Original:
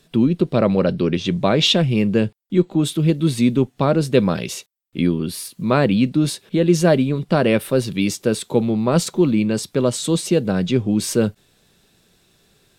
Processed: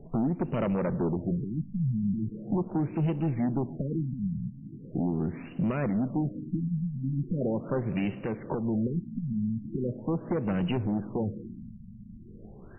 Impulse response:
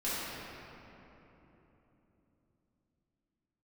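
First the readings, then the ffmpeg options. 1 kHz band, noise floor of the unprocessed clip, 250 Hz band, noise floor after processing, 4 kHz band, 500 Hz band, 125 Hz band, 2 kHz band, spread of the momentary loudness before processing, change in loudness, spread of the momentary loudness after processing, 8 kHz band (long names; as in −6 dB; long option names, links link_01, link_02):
−12.5 dB, −61 dBFS, −10.5 dB, −47 dBFS, below −25 dB, −15.0 dB, −9.0 dB, −17.0 dB, 6 LU, −12.0 dB, 10 LU, below −40 dB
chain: -filter_complex "[0:a]lowshelf=frequency=73:gain=10,acompressor=threshold=-32dB:ratio=3,aeval=exprs='0.133*(cos(1*acos(clip(val(0)/0.133,-1,1)))-cos(1*PI/2))+0.0335*(cos(5*acos(clip(val(0)/0.133,-1,1)))-cos(5*PI/2))+0.00668*(cos(6*acos(clip(val(0)/0.133,-1,1)))-cos(6*PI/2))+0.000944*(cos(8*acos(clip(val(0)/0.133,-1,1)))-cos(8*PI/2))':channel_layout=same,asplit=2[link_01][link_02];[1:a]atrim=start_sample=2205,adelay=35[link_03];[link_02][link_03]afir=irnorm=-1:irlink=0,volume=-22.5dB[link_04];[link_01][link_04]amix=inputs=2:normalize=0,alimiter=limit=-23dB:level=0:latency=1:release=334,afftfilt=real='re*lt(b*sr/1024,230*pow(3100/230,0.5+0.5*sin(2*PI*0.4*pts/sr)))':imag='im*lt(b*sr/1024,230*pow(3100/230,0.5+0.5*sin(2*PI*0.4*pts/sr)))':win_size=1024:overlap=0.75,volume=2dB"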